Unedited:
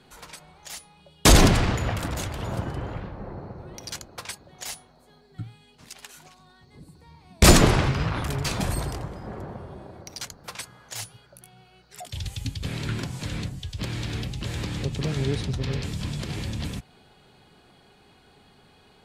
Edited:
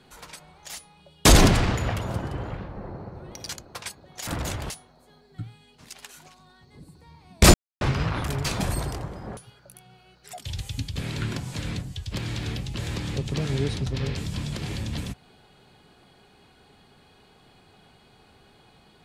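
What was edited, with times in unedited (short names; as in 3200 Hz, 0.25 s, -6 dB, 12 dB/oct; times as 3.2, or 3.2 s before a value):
1.99–2.42 move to 4.7
7.54–7.81 mute
9.37–11.04 cut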